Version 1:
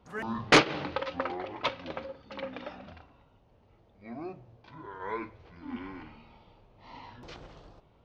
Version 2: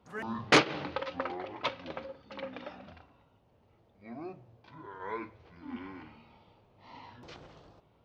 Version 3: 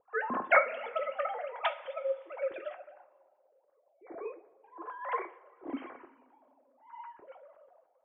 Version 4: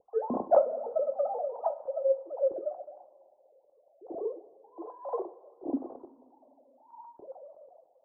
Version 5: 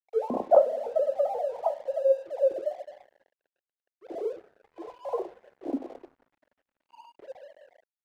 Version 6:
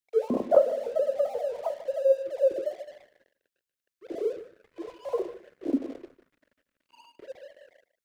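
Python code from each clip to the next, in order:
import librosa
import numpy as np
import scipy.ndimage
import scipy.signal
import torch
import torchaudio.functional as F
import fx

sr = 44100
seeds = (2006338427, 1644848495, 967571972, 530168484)

y1 = scipy.signal.sosfilt(scipy.signal.butter(2, 68.0, 'highpass', fs=sr, output='sos'), x)
y1 = y1 * 10.0 ** (-2.5 / 20.0)
y2 = fx.sine_speech(y1, sr)
y2 = fx.rev_double_slope(y2, sr, seeds[0], early_s=0.29, late_s=2.4, knee_db=-18, drr_db=7.0)
y2 = fx.env_lowpass(y2, sr, base_hz=690.0, full_db=-29.0)
y3 = scipy.signal.sosfilt(scipy.signal.butter(6, 790.0, 'lowpass', fs=sr, output='sos'), y2)
y3 = y3 * 10.0 ** (6.5 / 20.0)
y4 = fx.peak_eq(y3, sr, hz=560.0, db=4.0, octaves=1.1)
y4 = np.sign(y4) * np.maximum(np.abs(y4) - 10.0 ** (-53.5 / 20.0), 0.0)
y5 = fx.peak_eq(y4, sr, hz=810.0, db=-15.0, octaves=0.74)
y5 = y5 + 10.0 ** (-16.0 / 20.0) * np.pad(y5, (int(150 * sr / 1000.0), 0))[:len(y5)]
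y5 = y5 * 10.0 ** (5.5 / 20.0)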